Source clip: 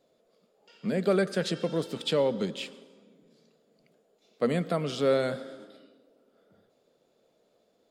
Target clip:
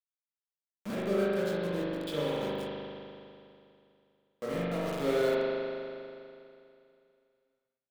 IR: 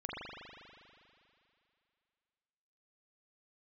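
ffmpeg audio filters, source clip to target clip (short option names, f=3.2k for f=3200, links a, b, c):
-filter_complex "[0:a]aeval=exprs='val(0)*gte(abs(val(0)),0.0335)':c=same,asettb=1/sr,asplit=3[a][b][c];[a]atrim=end=0.954[d];[b]atrim=start=0.95:end=4.86,asetpts=PTS-STARTPTS,afade=t=in:d=0.004:c=qsin,afade=t=out:st=3.906:d=0.004:c=qsin,flanger=delay=18:depth=4.5:speed=1.4[e];[c]atrim=start=4.856[f];[d][e]acrossfade=d=0.004:c1=hsin:c2=qsin[g];[g][f]acrossfade=d=0.004:c1=qsin:c2=hsin[h];[1:a]atrim=start_sample=2205[i];[h][i]afir=irnorm=-1:irlink=0,volume=-4dB"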